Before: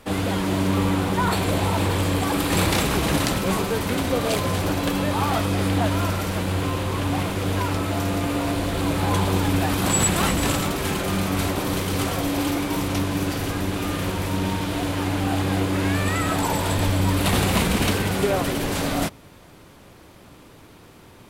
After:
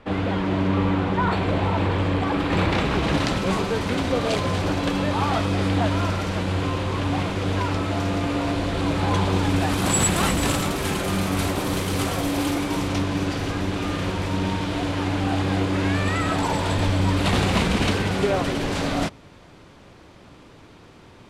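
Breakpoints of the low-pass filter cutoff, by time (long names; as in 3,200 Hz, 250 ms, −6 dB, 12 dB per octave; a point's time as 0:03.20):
0:02.71 2,900 Hz
0:03.45 6,000 Hz
0:09.33 6,000 Hz
0:09.94 12,000 Hz
0:12.45 12,000 Hz
0:13.05 6,200 Hz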